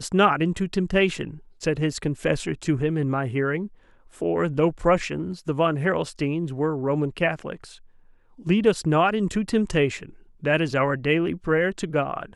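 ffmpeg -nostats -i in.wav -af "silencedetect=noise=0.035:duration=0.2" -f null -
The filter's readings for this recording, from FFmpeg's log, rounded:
silence_start: 1.31
silence_end: 1.63 | silence_duration: 0.32
silence_start: 3.66
silence_end: 4.22 | silence_duration: 0.56
silence_start: 7.64
silence_end: 8.47 | silence_duration: 0.83
silence_start: 10.03
silence_end: 10.44 | silence_duration: 0.41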